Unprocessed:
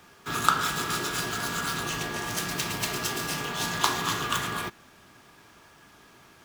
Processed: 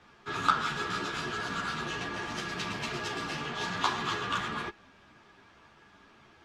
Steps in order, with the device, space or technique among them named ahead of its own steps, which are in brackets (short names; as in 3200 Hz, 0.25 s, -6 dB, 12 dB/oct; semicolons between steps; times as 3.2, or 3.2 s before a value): string-machine ensemble chorus (ensemble effect; LPF 4100 Hz 12 dB/oct)